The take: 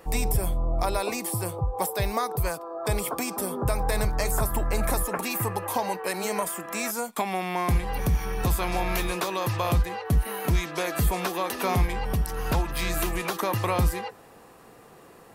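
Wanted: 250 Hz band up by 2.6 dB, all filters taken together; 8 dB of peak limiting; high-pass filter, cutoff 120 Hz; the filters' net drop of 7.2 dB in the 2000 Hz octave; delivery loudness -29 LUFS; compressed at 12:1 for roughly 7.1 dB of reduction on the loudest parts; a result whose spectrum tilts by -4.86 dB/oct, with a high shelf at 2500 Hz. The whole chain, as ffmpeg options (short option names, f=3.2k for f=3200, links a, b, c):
-af "highpass=120,equalizer=f=250:t=o:g=4.5,equalizer=f=2k:t=o:g=-7,highshelf=f=2.5k:g=-4.5,acompressor=threshold=-28dB:ratio=12,volume=6.5dB,alimiter=limit=-19dB:level=0:latency=1"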